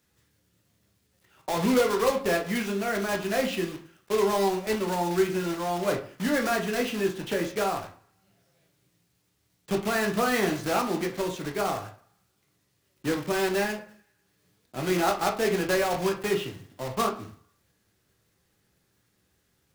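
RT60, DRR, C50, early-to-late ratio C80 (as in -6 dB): 0.40 s, 2.0 dB, 10.5 dB, 16.0 dB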